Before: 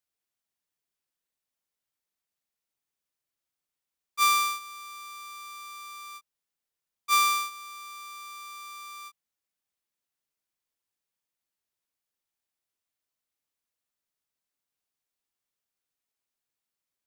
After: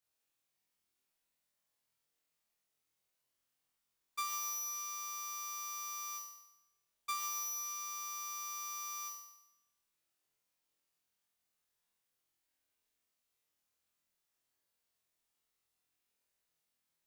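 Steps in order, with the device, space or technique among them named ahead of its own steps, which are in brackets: flutter echo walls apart 4.1 m, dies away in 0.88 s; serial compression, leveller first (compression 2.5:1, threshold -25 dBFS, peak gain reduction 6 dB; compression 6:1, threshold -35 dBFS, peak gain reduction 12 dB); trim -2 dB

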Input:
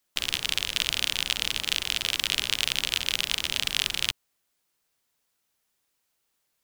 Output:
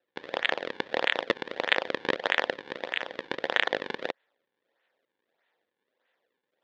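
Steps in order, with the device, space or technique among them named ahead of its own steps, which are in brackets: 2.53–3.32 s: treble shelf 4.7 kHz -10 dB; circuit-bent sampling toy (decimation with a swept rate 39×, swing 160% 1.6 Hz; cabinet simulation 460–4300 Hz, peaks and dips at 520 Hz +7 dB, 1.2 kHz -5 dB, 1.8 kHz +9 dB, 3.5 kHz +6 dB); trim -1 dB

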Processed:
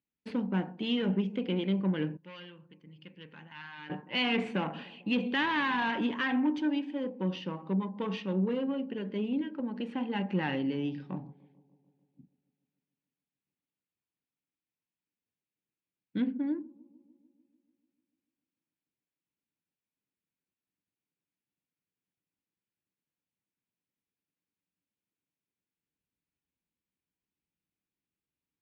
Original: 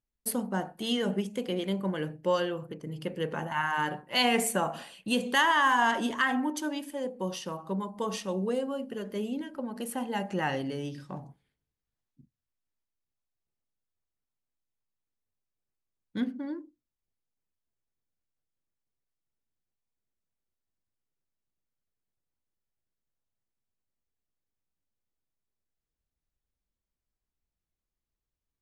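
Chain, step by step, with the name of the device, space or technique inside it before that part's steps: analogue delay pedal into a guitar amplifier (bucket-brigade echo 147 ms, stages 1024, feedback 68%, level -24 dB; valve stage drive 25 dB, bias 0.4; cabinet simulation 110–3600 Hz, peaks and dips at 180 Hz +7 dB, 290 Hz +7 dB, 660 Hz -7 dB, 1.2 kHz -5 dB, 2.5 kHz +5 dB); 2.17–3.90 s: amplifier tone stack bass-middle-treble 5-5-5

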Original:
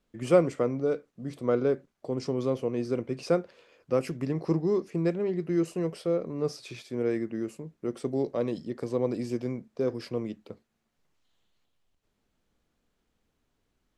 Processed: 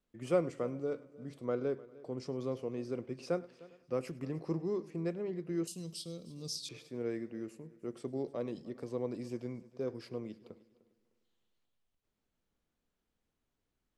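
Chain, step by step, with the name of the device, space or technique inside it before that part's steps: multi-head tape echo (multi-head delay 101 ms, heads first and third, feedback 41%, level -21 dB; wow and flutter 21 cents); 5.67–6.69 s: FFT filter 220 Hz 0 dB, 390 Hz -12 dB, 2 kHz -15 dB, 3.6 kHz +14 dB; trim -9 dB

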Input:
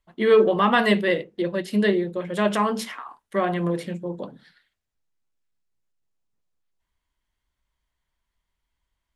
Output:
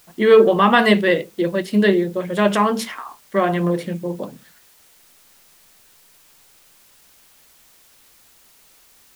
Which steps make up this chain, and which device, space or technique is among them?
plain cassette with noise reduction switched in (tape noise reduction on one side only decoder only; wow and flutter 24 cents; white noise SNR 32 dB); trim +5 dB

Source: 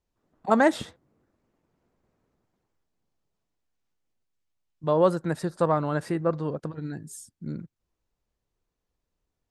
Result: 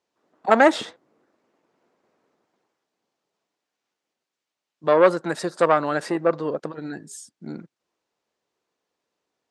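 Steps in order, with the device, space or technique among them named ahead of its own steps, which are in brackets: public-address speaker with an overloaded transformer (transformer saturation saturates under 900 Hz; band-pass 330–6900 Hz); 5.24–6.07 s: treble shelf 4.6 kHz +6 dB; trim +8 dB

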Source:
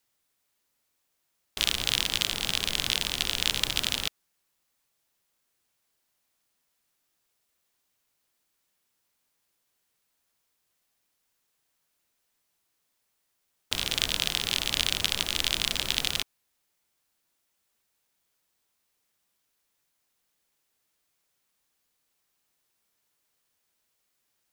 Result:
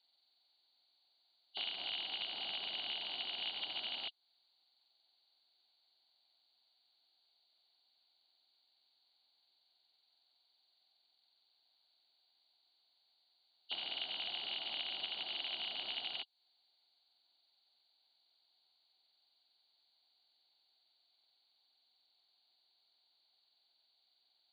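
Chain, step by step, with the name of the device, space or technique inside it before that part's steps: hearing aid with frequency lowering (knee-point frequency compression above 2.8 kHz 4:1; compression 2.5:1, threshold -37 dBFS, peak gain reduction 11.5 dB; cabinet simulation 400–6000 Hz, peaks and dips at 480 Hz -9 dB, 750 Hz +8 dB, 1.2 kHz -8 dB, 1.8 kHz -9 dB, 3.2 kHz -5 dB, 5.4 kHz -5 dB); trim -2 dB

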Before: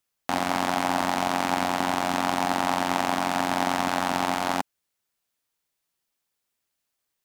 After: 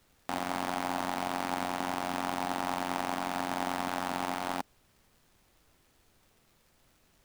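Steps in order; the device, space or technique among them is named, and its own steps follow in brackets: record under a worn stylus (tracing distortion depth 0.13 ms; crackle; pink noise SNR 31 dB); trim -8.5 dB

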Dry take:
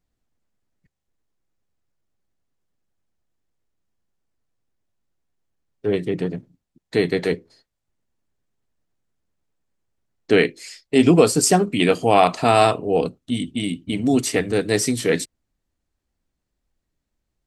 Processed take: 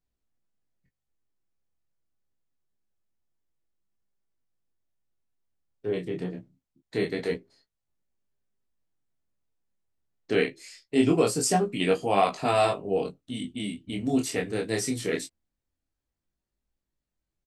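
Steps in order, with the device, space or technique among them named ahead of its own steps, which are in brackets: double-tracked vocal (doubling 15 ms -9 dB; chorus 0.24 Hz, delay 20 ms, depth 7.3 ms); trim -5.5 dB

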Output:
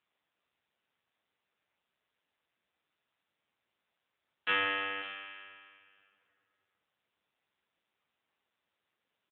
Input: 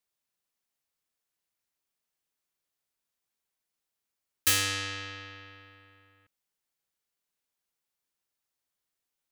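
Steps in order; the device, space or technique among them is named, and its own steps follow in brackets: 4.49–5.26 s: dynamic bell 700 Hz, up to +6 dB, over -50 dBFS, Q 1.1; satellite phone (band-pass 360–3100 Hz; delay 546 ms -16.5 dB; trim +2 dB; AMR-NB 6.7 kbps 8 kHz)

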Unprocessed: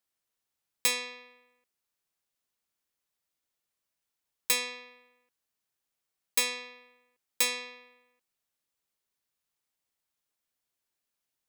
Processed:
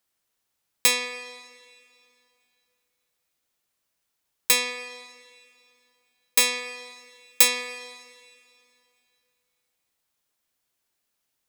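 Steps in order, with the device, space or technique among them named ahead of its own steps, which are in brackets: 6.40–7.48 s: treble shelf 8 kHz +5.5 dB; filtered reverb send (on a send: high-pass 280 Hz 24 dB/octave + low-pass 5.7 kHz 12 dB/octave + reverberation RT60 2.7 s, pre-delay 118 ms, DRR 14 dB); on the sum: trim +7 dB

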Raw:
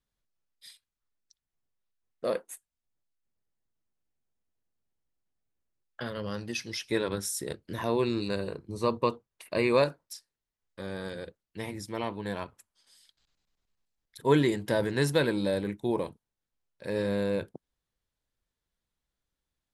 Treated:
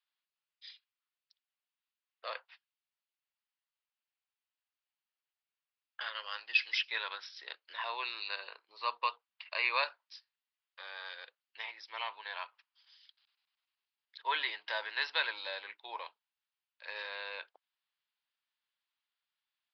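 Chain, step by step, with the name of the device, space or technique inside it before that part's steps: musical greeting card (resampled via 11.025 kHz; high-pass 880 Hz 24 dB/octave; peaking EQ 2.8 kHz +6 dB 0.6 oct); 6.02–6.83 s: dynamic bell 2.3 kHz, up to +5 dB, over -44 dBFS, Q 0.78; trim -1 dB

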